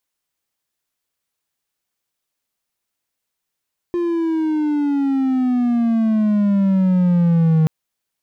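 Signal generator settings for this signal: gliding synth tone triangle, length 3.73 s, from 351 Hz, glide -14 st, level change +6 dB, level -9 dB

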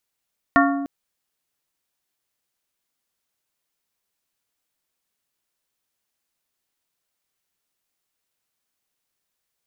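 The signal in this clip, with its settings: glass hit plate, length 0.30 s, lowest mode 279 Hz, modes 5, decay 1.54 s, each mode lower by 0.5 dB, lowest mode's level -15 dB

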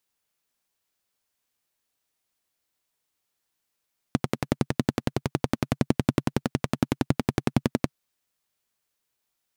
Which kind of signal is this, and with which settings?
single-cylinder engine model, steady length 3.76 s, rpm 1300, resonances 140/230 Hz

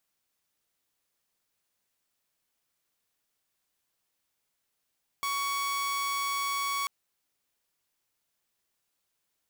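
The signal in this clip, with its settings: tone saw 1.12 kHz -26 dBFS 1.64 s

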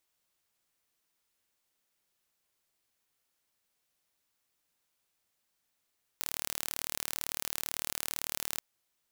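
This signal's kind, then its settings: pulse train 37.9 per s, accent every 0, -7 dBFS 2.38 s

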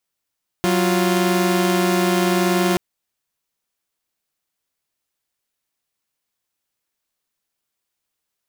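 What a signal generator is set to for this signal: chord F#3/F4 saw, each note -16 dBFS 2.13 s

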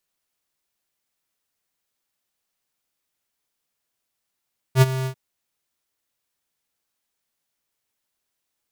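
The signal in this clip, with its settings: ADSR square 131 Hz, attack 67 ms, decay 31 ms, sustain -14.5 dB, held 0.31 s, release 83 ms -10.5 dBFS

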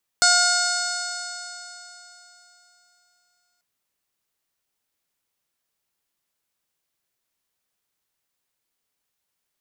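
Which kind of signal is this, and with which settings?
stretched partials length 3.39 s, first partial 710 Hz, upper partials 5.5/-9/-17.5/-7/4/1.5/-1.5/-1.5/0.5/-5.5/-18.5 dB, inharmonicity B 0.0017, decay 3.47 s, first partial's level -23 dB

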